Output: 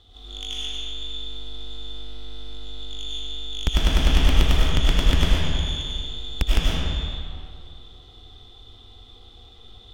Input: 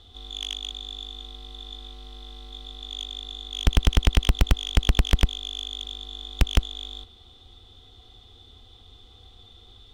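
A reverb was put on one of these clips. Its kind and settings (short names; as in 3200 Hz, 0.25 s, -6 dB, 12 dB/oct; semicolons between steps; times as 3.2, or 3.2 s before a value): digital reverb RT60 2.2 s, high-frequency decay 0.65×, pre-delay 60 ms, DRR -6.5 dB; gain -3.5 dB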